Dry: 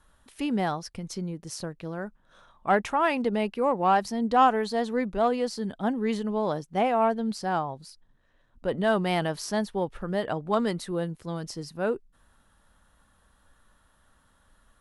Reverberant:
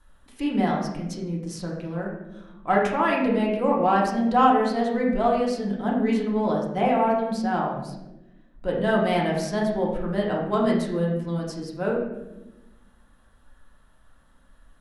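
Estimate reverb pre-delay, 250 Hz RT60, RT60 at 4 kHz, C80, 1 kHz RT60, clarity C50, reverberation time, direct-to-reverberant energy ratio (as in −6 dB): 3 ms, 1.7 s, 0.60 s, 6.0 dB, 0.80 s, 3.0 dB, 1.0 s, −3.0 dB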